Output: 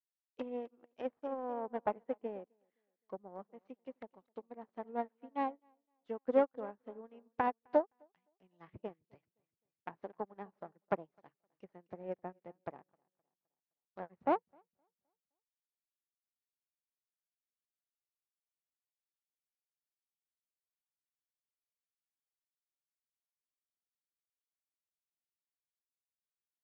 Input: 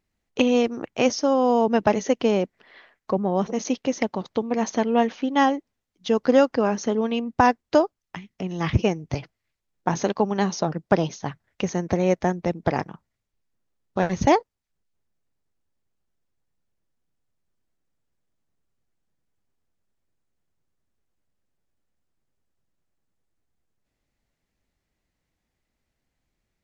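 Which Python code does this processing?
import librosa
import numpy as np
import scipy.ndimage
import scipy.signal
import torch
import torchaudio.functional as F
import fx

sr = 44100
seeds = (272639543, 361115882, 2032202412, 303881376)

y = fx.tracing_dist(x, sr, depth_ms=0.24)
y = fx.env_lowpass_down(y, sr, base_hz=1300.0, full_db=-19.5)
y = fx.highpass(y, sr, hz=450.0, slope=6)
y = fx.air_absorb(y, sr, metres=190.0)
y = fx.echo_feedback(y, sr, ms=259, feedback_pct=45, wet_db=-14)
y = fx.upward_expand(y, sr, threshold_db=-38.0, expansion=2.5)
y = y * librosa.db_to_amplitude(-6.5)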